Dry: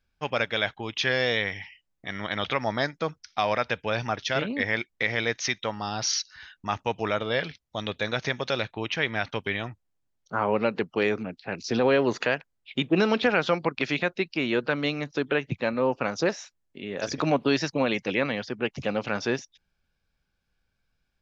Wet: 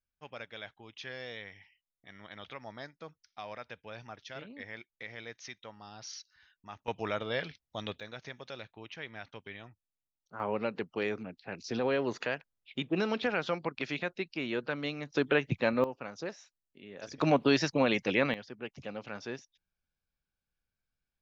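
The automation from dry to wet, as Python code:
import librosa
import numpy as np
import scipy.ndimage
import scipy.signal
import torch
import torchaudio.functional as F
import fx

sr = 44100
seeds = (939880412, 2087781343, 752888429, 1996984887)

y = fx.gain(x, sr, db=fx.steps((0.0, -18.0), (6.88, -7.0), (8.0, -16.5), (10.4, -8.5), (15.12, -1.5), (15.84, -14.0), (17.21, -2.0), (18.34, -13.0)))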